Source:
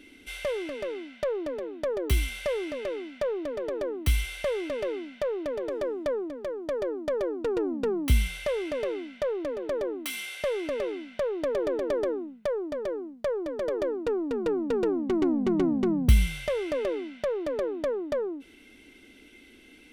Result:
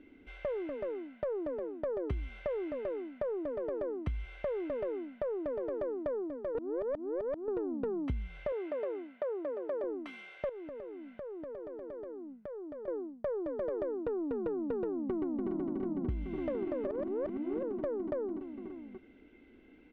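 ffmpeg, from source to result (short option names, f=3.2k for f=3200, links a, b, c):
-filter_complex "[0:a]asettb=1/sr,asplit=3[a][b][c];[a]atrim=end=8.524[d];[b]atrim=start=8.52:end=9.84,asetpts=PTS-STARTPTS,afade=t=in:d=0.004:c=qsin,afade=t=out:st=1.316:d=0.004:c=qsin,highpass=350,lowpass=5.4k[e];[c]atrim=start=9.836[f];[d][e]acrossfade=d=0.004:c1=hsin:c2=qsin[g];[g][f]acrossfade=d=0.004:c1=qsin:c2=hsin,asettb=1/sr,asplit=3[h][i][j];[h]atrim=end=10.494[k];[i]atrim=start=10.49:end=12.88,asetpts=PTS-STARTPTS,afade=t=in:d=0.004:c=qsin,afade=t=out:st=2.386:d=0.004:c=qsin,acompressor=threshold=-39dB:ratio=5:attack=3.2:release=140:knee=1:detection=peak[l];[j]atrim=start=12.876[m];[k][l]acrossfade=d=0.004:c1=hsin:c2=qsin[n];[n][m]acrossfade=d=0.004:c1=qsin:c2=hsin,asplit=2[o][p];[p]afade=t=in:st=15.05:d=0.01,afade=t=out:st=15.49:d=0.01,aecho=0:1:290|580|870|1160|1450|1740|2030|2320|2610|2900|3190|3480:0.707946|0.601754|0.511491|0.434767|0.369552|0.314119|0.267001|0.226951|0.192909|0.163972|0.139376|0.11847[q];[o][q]amix=inputs=2:normalize=0,asplit=5[r][s][t][u][v];[r]atrim=end=6.552[w];[s]atrim=start=6.548:end=7.482,asetpts=PTS-STARTPTS,areverse[x];[t]atrim=start=7.478:end=16.872[y];[u]atrim=start=16.868:end=17.632,asetpts=PTS-STARTPTS,areverse[z];[v]atrim=start=17.628[aa];[w][x]acrossfade=d=0.004:c1=hsin:c2=hsin[ab];[ab][y]acrossfade=d=0.004:c1=hsin:c2=hsin[ac];[ac][z]acrossfade=d=0.004:c1=hsin:c2=hsin[ad];[ad][aa]acrossfade=d=0.004:c1=hsin:c2=hsin,lowpass=1.3k,acompressor=threshold=-28dB:ratio=16,volume=-3dB"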